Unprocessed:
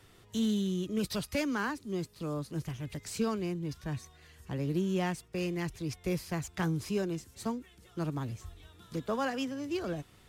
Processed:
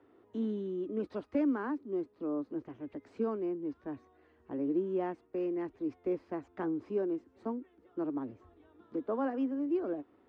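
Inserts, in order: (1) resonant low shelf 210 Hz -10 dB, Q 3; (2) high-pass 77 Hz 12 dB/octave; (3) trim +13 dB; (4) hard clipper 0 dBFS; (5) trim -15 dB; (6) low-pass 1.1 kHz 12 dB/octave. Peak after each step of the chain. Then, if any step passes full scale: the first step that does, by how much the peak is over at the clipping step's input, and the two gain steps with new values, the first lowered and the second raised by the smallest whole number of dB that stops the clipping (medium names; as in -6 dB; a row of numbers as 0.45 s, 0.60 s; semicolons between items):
-18.0 dBFS, -17.5 dBFS, -4.5 dBFS, -4.5 dBFS, -19.5 dBFS, -21.0 dBFS; nothing clips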